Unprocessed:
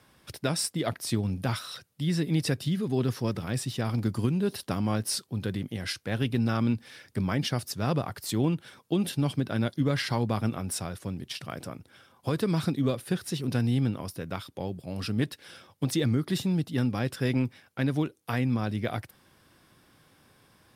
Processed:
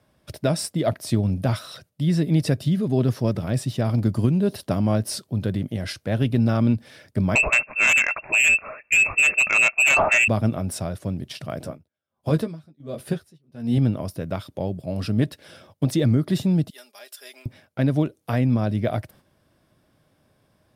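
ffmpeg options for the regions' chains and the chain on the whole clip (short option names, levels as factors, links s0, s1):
-filter_complex "[0:a]asettb=1/sr,asplit=3[s0][s1][s2];[s0]atrim=end=7.354[s3];[s1]atrim=start=7.35:end=10.28,asetpts=PTS-STARTPTS,afade=t=in:d=0.004:c=qsin,afade=t=out:st=2.926:d=0.004:c=qsin,lowpass=f=2400:t=q:w=0.5098,lowpass=f=2400:t=q:w=0.6013,lowpass=f=2400:t=q:w=0.9,lowpass=f=2400:t=q:w=2.563,afreqshift=-2800,aeval=exprs='0.211*sin(PI/2*2.51*val(0)/0.211)':c=same[s4];[s2]atrim=start=10.276[s5];[s3][s4]acrossfade=d=0.004:c1=hsin:c2=qsin[s6];[s6][s5]acrossfade=d=0.004:c1=qsin:c2=hsin,asettb=1/sr,asplit=3[s7][s8][s9];[s7]atrim=end=11.634[s10];[s8]atrim=start=11.63:end=13.78,asetpts=PTS-STARTPTS,afade=t=in:d=0.004:c=qsin,afade=t=out:st=2.146:d=0.004:c=qsin,asplit=2[s11][s12];[s12]adelay=13,volume=0.562[s13];[s11][s13]amix=inputs=2:normalize=0,atrim=end_sample=94815,aeval=exprs='val(0)*pow(10,-32*(0.5-0.5*cos(2*PI*1.4*n/s))/20)':c=same[s14];[s9]atrim=start=13.776[s15];[s10][s14]acrossfade=d=0.004:c1=hsin:c2=qsin[s16];[s16][s15]acrossfade=d=0.004:c1=qsin:c2=hsin,asettb=1/sr,asplit=3[s17][s18][s19];[s17]atrim=end=16.704[s20];[s18]atrim=start=16.7:end=17.46,asetpts=PTS-STARTPTS,afade=t=in:d=0.004:c=qsin,afade=t=out:st=0.756:d=0.004:c=qsin,highpass=f=360:w=0.5412,highpass=f=360:w=1.3066,aderivative,aecho=1:1:4.9:0.66,atrim=end_sample=33516[s21];[s19]atrim=start=17.456[s22];[s20][s21]acrossfade=d=0.004:c1=hsin:c2=qsin[s23];[s23][s22]acrossfade=d=0.004:c1=qsin:c2=hsin,equalizer=f=620:t=o:w=0.29:g=11,agate=range=0.398:threshold=0.002:ratio=16:detection=peak,lowshelf=f=440:g=8"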